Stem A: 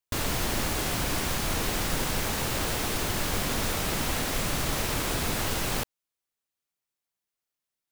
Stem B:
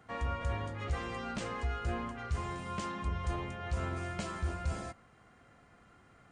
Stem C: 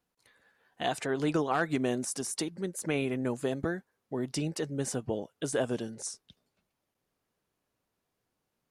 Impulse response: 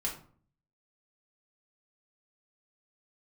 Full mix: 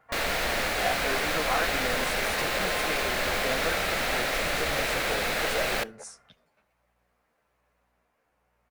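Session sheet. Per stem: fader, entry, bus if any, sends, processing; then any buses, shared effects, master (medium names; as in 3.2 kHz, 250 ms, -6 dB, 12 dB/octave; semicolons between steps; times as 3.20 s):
-5.5 dB, 0.00 s, send -23 dB, fifteen-band graphic EQ 100 Hz -10 dB, 1 kHz -9 dB, 4 kHz +8 dB
-13.0 dB, 0.00 s, no send, none
+2.0 dB, 0.00 s, send -16 dB, compression 2:1, threshold -46 dBFS, peak gain reduction 12 dB; hum 60 Hz, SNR 35 dB; endless flanger 11.3 ms -1.2 Hz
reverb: on, RT60 0.50 s, pre-delay 4 ms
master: high-order bell 1.1 kHz +12.5 dB 2.7 oct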